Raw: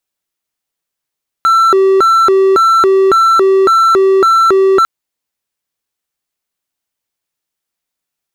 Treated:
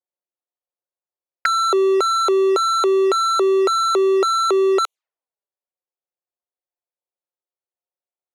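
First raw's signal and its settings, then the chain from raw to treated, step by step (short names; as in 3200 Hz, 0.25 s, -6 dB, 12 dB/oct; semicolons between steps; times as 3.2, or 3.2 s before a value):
siren hi-lo 385–1340 Hz 1.8/s triangle -3.5 dBFS 3.40 s
HPF 450 Hz 24 dB/oct; envelope flanger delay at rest 5.6 ms, full sweep at -12 dBFS; low-pass opened by the level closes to 570 Hz, open at -19 dBFS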